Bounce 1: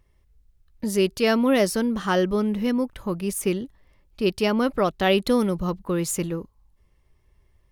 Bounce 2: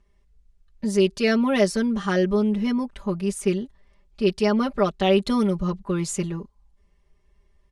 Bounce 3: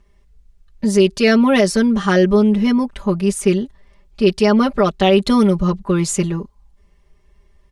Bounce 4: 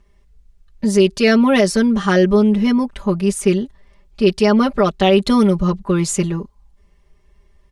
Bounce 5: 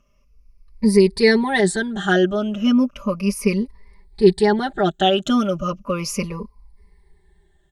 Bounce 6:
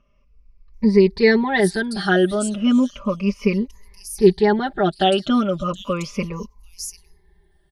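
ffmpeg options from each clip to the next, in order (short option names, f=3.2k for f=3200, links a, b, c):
-af "lowpass=f=9.1k:w=0.5412,lowpass=f=9.1k:w=1.3066,aecho=1:1:5:0.98,volume=-3.5dB"
-af "alimiter=level_in=10.5dB:limit=-1dB:release=50:level=0:latency=1,volume=-2.5dB"
-af anull
-af "afftfilt=real='re*pow(10,18/40*sin(2*PI*(0.89*log(max(b,1)*sr/1024/100)/log(2)-(-0.35)*(pts-256)/sr)))':imag='im*pow(10,18/40*sin(2*PI*(0.89*log(max(b,1)*sr/1024/100)/log(2)-(-0.35)*(pts-256)/sr)))':win_size=1024:overlap=0.75,volume=-5.5dB"
-filter_complex "[0:a]acrossover=split=4800[a][b];[b]adelay=740[c];[a][c]amix=inputs=2:normalize=0"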